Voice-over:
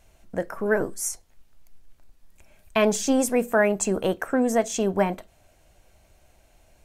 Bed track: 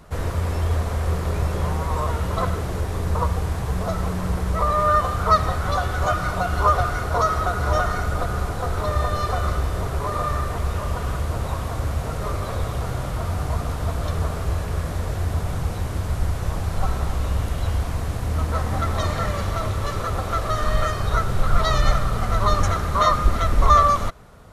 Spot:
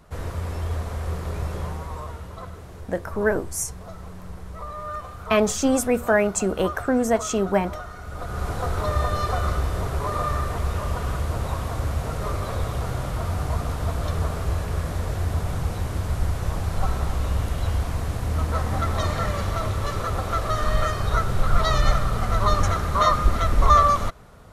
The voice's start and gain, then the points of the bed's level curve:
2.55 s, +1.0 dB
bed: 1.56 s -5.5 dB
2.39 s -14.5 dB
7.99 s -14.5 dB
8.5 s -1 dB

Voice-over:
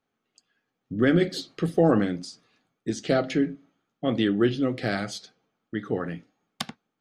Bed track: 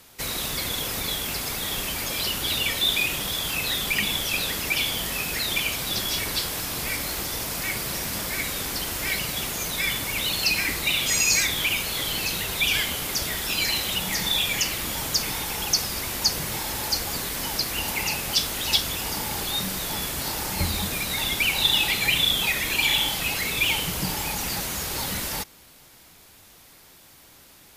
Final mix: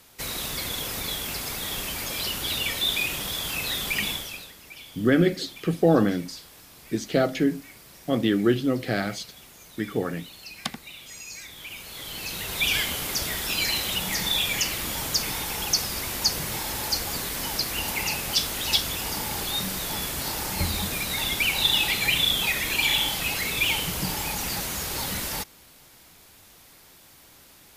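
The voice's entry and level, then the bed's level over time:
4.05 s, +1.0 dB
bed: 4.09 s -2.5 dB
4.54 s -19.5 dB
11.39 s -19.5 dB
12.65 s -1 dB

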